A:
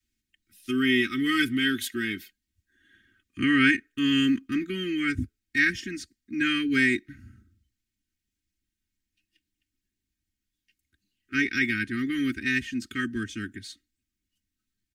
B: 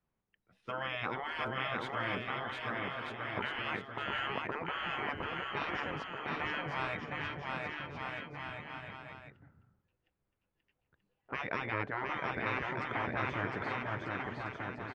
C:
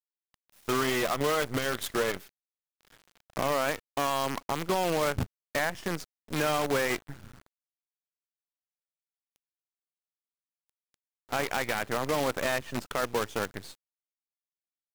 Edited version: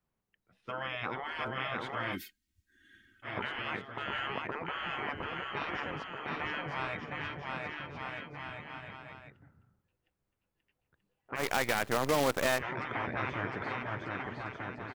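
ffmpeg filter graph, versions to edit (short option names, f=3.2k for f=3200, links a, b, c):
-filter_complex "[1:a]asplit=3[a][b][c];[a]atrim=end=2.17,asetpts=PTS-STARTPTS[d];[0:a]atrim=start=2.11:end=3.28,asetpts=PTS-STARTPTS[e];[b]atrim=start=3.22:end=11.45,asetpts=PTS-STARTPTS[f];[2:a]atrim=start=11.35:end=12.64,asetpts=PTS-STARTPTS[g];[c]atrim=start=12.54,asetpts=PTS-STARTPTS[h];[d][e]acrossfade=d=0.06:c1=tri:c2=tri[i];[i][f]acrossfade=d=0.06:c1=tri:c2=tri[j];[j][g]acrossfade=d=0.1:c1=tri:c2=tri[k];[k][h]acrossfade=d=0.1:c1=tri:c2=tri"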